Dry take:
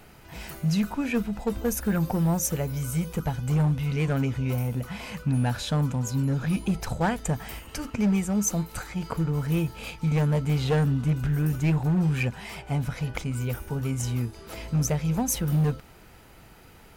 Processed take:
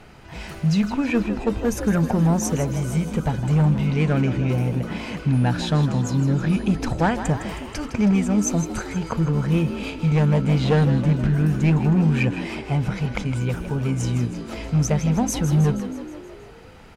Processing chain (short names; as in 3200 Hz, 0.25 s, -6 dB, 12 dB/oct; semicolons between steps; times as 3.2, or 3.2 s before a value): air absorption 62 m; frequency-shifting echo 0.159 s, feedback 59%, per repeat +51 Hz, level -11 dB; gain +5 dB